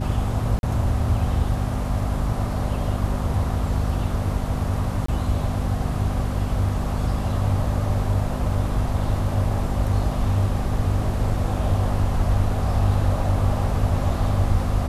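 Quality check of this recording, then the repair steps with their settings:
mains hum 50 Hz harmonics 5 −27 dBFS
0:00.59–0:00.63: drop-out 41 ms
0:05.06–0:05.08: drop-out 24 ms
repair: hum removal 50 Hz, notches 5
repair the gap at 0:00.59, 41 ms
repair the gap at 0:05.06, 24 ms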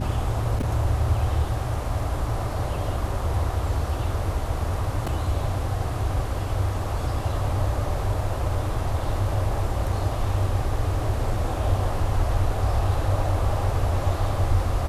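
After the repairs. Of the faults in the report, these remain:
none of them is left

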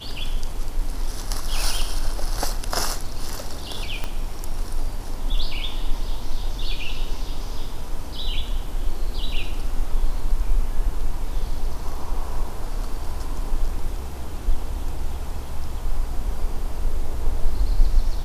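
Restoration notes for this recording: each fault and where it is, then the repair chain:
0:04.04: click −14 dBFS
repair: click removal

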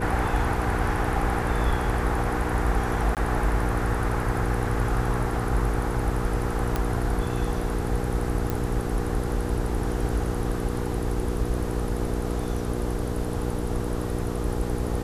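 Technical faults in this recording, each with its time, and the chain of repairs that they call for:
mains hum 60 Hz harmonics 8 −30 dBFS
0:03.15–0:03.17: drop-out 18 ms
0:06.76: click −12 dBFS
0:08.50: click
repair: click removal
hum removal 60 Hz, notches 8
repair the gap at 0:03.15, 18 ms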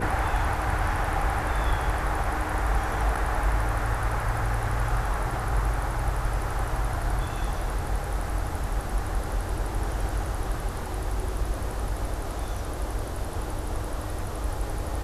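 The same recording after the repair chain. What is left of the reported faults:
none of them is left

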